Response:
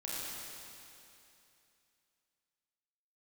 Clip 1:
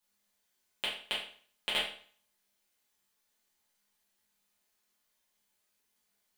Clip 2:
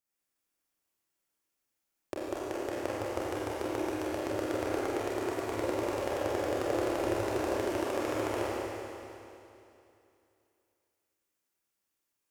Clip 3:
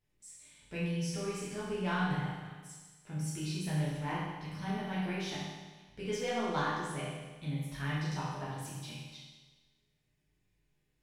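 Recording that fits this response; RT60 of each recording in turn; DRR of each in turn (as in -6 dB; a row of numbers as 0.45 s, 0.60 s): 2; 0.50 s, 2.8 s, 1.3 s; -7.5 dB, -7.5 dB, -8.5 dB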